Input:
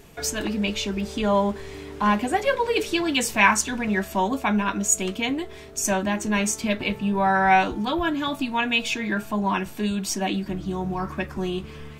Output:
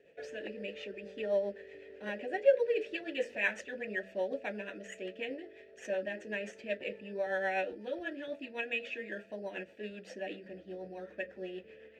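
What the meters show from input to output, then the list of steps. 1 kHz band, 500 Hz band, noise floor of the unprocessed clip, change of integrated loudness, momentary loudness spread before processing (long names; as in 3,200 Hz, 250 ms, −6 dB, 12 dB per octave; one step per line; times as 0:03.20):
−22.0 dB, −6.5 dB, −40 dBFS, −13.0 dB, 10 LU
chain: high-shelf EQ 8,900 Hz −8.5 dB
hum removal 48.78 Hz, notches 7
rotating-speaker cabinet horn 8 Hz
in parallel at −9 dB: decimation without filtering 9×
on the sum: formant filter e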